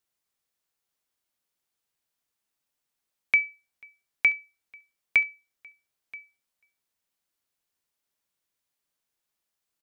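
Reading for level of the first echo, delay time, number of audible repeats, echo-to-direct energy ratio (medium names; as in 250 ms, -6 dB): -21.0 dB, 979 ms, 1, -21.0 dB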